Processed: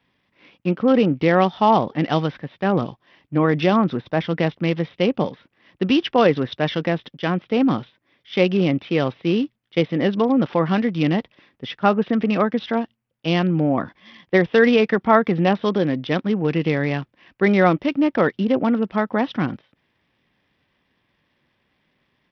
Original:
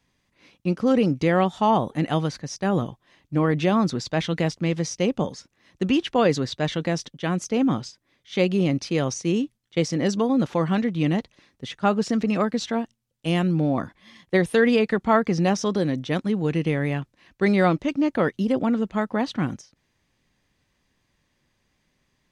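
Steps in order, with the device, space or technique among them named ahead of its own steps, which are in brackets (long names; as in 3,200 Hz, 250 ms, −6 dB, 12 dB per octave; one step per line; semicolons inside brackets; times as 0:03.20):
0:03.94–0:04.40: dynamic equaliser 3,200 Hz, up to −7 dB, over −47 dBFS, Q 1
Bluetooth headset (high-pass filter 160 Hz 6 dB per octave; downsampling to 8,000 Hz; level +4.5 dB; SBC 64 kbit/s 44,100 Hz)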